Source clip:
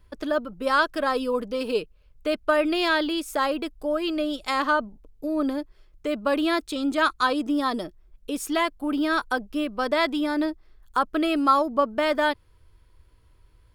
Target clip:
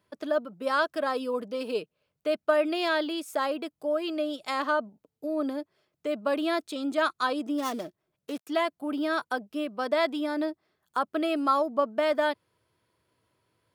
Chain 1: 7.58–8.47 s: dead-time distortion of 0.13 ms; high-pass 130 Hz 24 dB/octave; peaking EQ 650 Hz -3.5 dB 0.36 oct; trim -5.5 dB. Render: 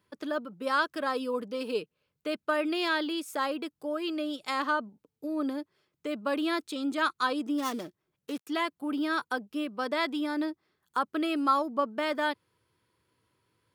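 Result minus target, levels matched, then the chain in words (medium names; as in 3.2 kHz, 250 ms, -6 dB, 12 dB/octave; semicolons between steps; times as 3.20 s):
500 Hz band -3.5 dB
7.58–8.47 s: dead-time distortion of 0.13 ms; high-pass 130 Hz 24 dB/octave; peaking EQ 650 Hz +6 dB 0.36 oct; trim -5.5 dB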